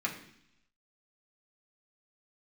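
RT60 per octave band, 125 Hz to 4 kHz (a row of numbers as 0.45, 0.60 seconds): 0.95, 0.90, 0.70, 0.70, 0.90, 1.0 seconds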